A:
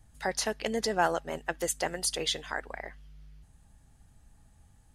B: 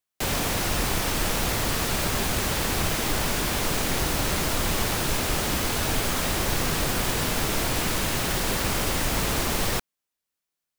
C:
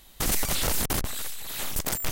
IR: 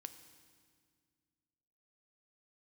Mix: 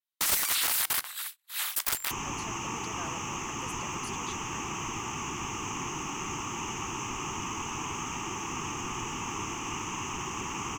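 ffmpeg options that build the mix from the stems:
-filter_complex "[0:a]adelay=2000,volume=0.133[s0];[1:a]firequalizer=gain_entry='entry(110,0);entry(170,-7);entry(360,-2);entry(580,-24);entry(1000,13);entry(1500,-13);entry(2800,1);entry(4100,-29);entry(6300,4);entry(9300,-27)':delay=0.05:min_phase=1,adelay=1900,volume=0.631[s1];[2:a]highpass=f=1000:w=0.5412,highpass=f=1000:w=1.3066,adynamicequalizer=threshold=0.00447:dfrequency=6500:dqfactor=1.6:tfrequency=6500:tqfactor=1.6:attack=5:release=100:ratio=0.375:range=3.5:mode=cutabove:tftype=bell,aeval=exprs='(mod(10.6*val(0)+1,2)-1)/10.6':c=same,volume=1.06,asplit=2[s2][s3];[s3]volume=0.562[s4];[3:a]atrim=start_sample=2205[s5];[s4][s5]afir=irnorm=-1:irlink=0[s6];[s0][s1][s2][s6]amix=inputs=4:normalize=0,agate=range=0.00794:threshold=0.0224:ratio=16:detection=peak,afftfilt=real='re*lt(hypot(re,im),0.126)':imag='im*lt(hypot(re,im),0.126)':win_size=1024:overlap=0.75"

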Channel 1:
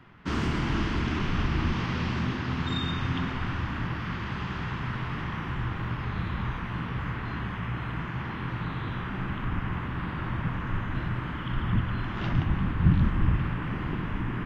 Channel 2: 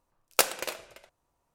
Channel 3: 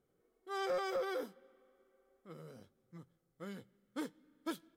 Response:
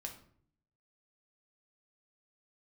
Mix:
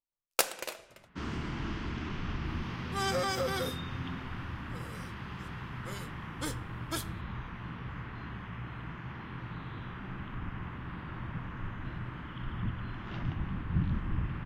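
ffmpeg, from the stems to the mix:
-filter_complex "[0:a]adelay=900,volume=0.355[s0];[1:a]agate=range=0.0708:threshold=0.00178:ratio=16:detection=peak,volume=0.596[s1];[2:a]lowpass=8700,aemphasis=mode=production:type=riaa,adelay=2450,volume=1.33,asplit=2[s2][s3];[s3]volume=0.668[s4];[3:a]atrim=start_sample=2205[s5];[s4][s5]afir=irnorm=-1:irlink=0[s6];[s0][s1][s2][s6]amix=inputs=4:normalize=0"

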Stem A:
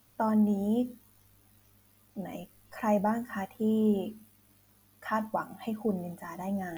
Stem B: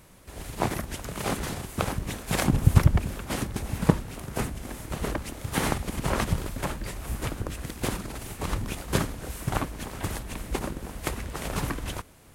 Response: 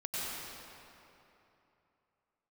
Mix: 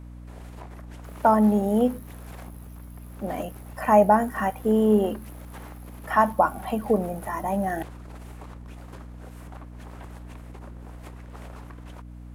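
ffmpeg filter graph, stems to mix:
-filter_complex "[0:a]equalizer=f=11000:w=2:g=12.5,adelay=1050,volume=1.12[s0];[1:a]acompressor=threshold=0.0158:ratio=10,asoftclip=type=tanh:threshold=0.0299,volume=0.251[s1];[s0][s1]amix=inputs=2:normalize=0,equalizer=f=830:w=0.37:g=11.5,aeval=exprs='val(0)+0.01*(sin(2*PI*60*n/s)+sin(2*PI*2*60*n/s)/2+sin(2*PI*3*60*n/s)/3+sin(2*PI*4*60*n/s)/4+sin(2*PI*5*60*n/s)/5)':c=same"

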